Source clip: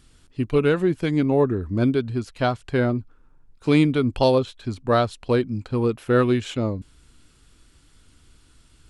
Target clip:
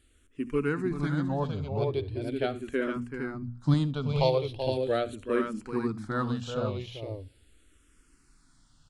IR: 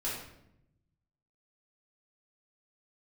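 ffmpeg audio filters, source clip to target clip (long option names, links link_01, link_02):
-filter_complex "[0:a]bandreject=frequency=60:width_type=h:width=6,bandreject=frequency=120:width_type=h:width=6,bandreject=frequency=180:width_type=h:width=6,bandreject=frequency=240:width_type=h:width=6,asettb=1/sr,asplit=3[link_01][link_02][link_03];[link_01]atrim=end=2.964[link_04];[link_02]atrim=start=2.96:end=3.74,asetpts=PTS-STARTPTS,afade=type=in:duration=0.004:curve=qsin,afade=type=out:start_time=0.776:duration=0.004:curve=qsin,equalizer=frequency=110:width_type=o:width=1.9:gain=11[link_05];[link_03]atrim=start=3.736[link_06];[link_04][link_05]acrossfade=duration=0.004:curve1=hsin:curve2=qsin[link_07];[link_07][link_06]acrossfade=duration=0.004:curve1=qsin:curve2=hsin,aecho=1:1:69|382|459:0.106|0.398|0.562,asplit=2[link_08][link_09];[1:a]atrim=start_sample=2205,asetrate=74970,aresample=44100[link_10];[link_09][link_10]afir=irnorm=-1:irlink=0,volume=-23dB[link_11];[link_08][link_11]amix=inputs=2:normalize=0,asplit=2[link_12][link_13];[link_13]afreqshift=-0.4[link_14];[link_12][link_14]amix=inputs=2:normalize=1,volume=-6dB"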